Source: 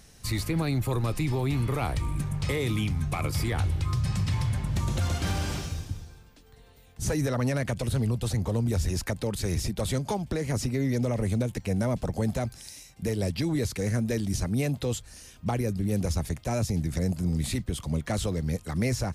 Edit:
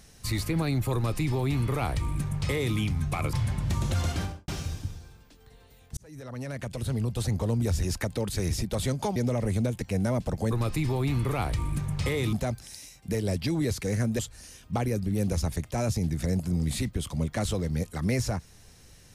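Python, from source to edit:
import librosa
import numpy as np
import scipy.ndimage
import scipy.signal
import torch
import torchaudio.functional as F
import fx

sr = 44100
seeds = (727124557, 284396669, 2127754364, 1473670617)

y = fx.studio_fade_out(x, sr, start_s=5.16, length_s=0.38)
y = fx.edit(y, sr, fx.duplicate(start_s=0.94, length_s=1.82, to_s=12.27),
    fx.cut(start_s=3.33, length_s=1.06),
    fx.fade_in_span(start_s=7.03, length_s=1.32),
    fx.cut(start_s=10.22, length_s=0.7),
    fx.cut(start_s=14.13, length_s=0.79), tone=tone)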